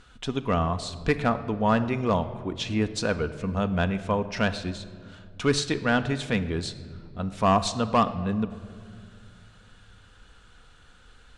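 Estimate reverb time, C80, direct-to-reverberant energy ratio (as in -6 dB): 2.2 s, 15.0 dB, 9.5 dB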